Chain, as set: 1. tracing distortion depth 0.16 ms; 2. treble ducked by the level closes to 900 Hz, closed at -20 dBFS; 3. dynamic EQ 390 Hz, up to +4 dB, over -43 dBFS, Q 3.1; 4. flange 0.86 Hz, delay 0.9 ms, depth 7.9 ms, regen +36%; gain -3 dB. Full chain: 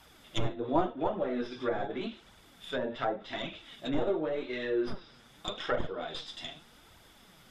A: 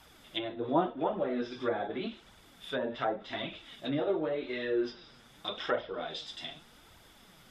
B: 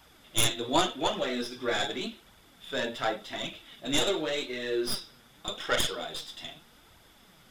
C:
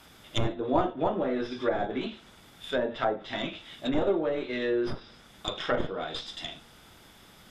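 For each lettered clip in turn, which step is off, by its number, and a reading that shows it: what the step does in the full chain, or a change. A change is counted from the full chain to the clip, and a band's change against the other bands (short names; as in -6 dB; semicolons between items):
1, 125 Hz band -3.5 dB; 2, 4 kHz band +10.5 dB; 4, loudness change +3.5 LU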